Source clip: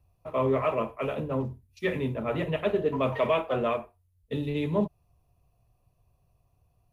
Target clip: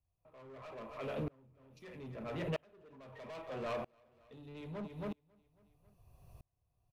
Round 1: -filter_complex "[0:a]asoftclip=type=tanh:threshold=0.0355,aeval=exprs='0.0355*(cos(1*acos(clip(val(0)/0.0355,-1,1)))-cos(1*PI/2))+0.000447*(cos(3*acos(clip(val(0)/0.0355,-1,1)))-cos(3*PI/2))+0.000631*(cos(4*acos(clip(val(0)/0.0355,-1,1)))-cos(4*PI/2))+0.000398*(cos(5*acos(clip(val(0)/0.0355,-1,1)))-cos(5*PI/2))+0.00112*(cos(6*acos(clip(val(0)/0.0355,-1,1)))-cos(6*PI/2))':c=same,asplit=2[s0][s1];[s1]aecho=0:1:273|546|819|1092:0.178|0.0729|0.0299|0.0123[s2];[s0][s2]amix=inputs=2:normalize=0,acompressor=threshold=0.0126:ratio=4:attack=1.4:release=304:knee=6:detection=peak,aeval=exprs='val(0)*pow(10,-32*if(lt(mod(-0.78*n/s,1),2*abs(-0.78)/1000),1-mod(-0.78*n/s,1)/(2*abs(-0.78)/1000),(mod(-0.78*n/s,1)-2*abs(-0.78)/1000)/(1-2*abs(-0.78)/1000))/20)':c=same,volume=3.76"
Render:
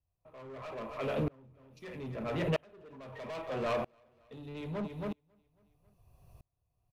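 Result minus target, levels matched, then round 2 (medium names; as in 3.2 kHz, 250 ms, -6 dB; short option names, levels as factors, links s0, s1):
compression: peak gain reduction -6.5 dB
-filter_complex "[0:a]asoftclip=type=tanh:threshold=0.0355,aeval=exprs='0.0355*(cos(1*acos(clip(val(0)/0.0355,-1,1)))-cos(1*PI/2))+0.000447*(cos(3*acos(clip(val(0)/0.0355,-1,1)))-cos(3*PI/2))+0.000631*(cos(4*acos(clip(val(0)/0.0355,-1,1)))-cos(4*PI/2))+0.000398*(cos(5*acos(clip(val(0)/0.0355,-1,1)))-cos(5*PI/2))+0.00112*(cos(6*acos(clip(val(0)/0.0355,-1,1)))-cos(6*PI/2))':c=same,asplit=2[s0][s1];[s1]aecho=0:1:273|546|819|1092:0.178|0.0729|0.0299|0.0123[s2];[s0][s2]amix=inputs=2:normalize=0,acompressor=threshold=0.00473:ratio=4:attack=1.4:release=304:knee=6:detection=peak,aeval=exprs='val(0)*pow(10,-32*if(lt(mod(-0.78*n/s,1),2*abs(-0.78)/1000),1-mod(-0.78*n/s,1)/(2*abs(-0.78)/1000),(mod(-0.78*n/s,1)-2*abs(-0.78)/1000)/(1-2*abs(-0.78)/1000))/20)':c=same,volume=3.76"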